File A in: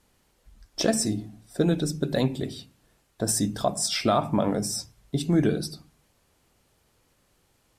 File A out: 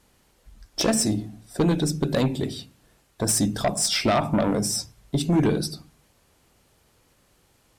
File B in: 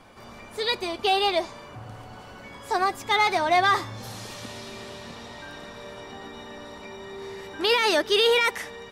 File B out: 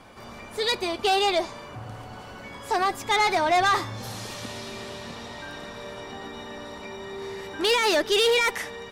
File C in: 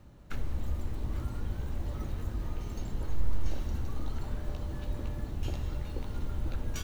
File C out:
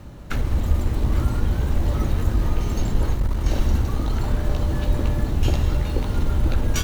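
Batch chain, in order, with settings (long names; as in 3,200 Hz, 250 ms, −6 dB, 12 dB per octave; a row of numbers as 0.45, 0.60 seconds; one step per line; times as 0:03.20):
sine wavefolder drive 6 dB, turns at −9.5 dBFS
harmonic generator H 2 −21 dB, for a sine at −8 dBFS
loudness normalisation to −24 LKFS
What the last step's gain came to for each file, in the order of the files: −5.5, −7.5, +4.5 decibels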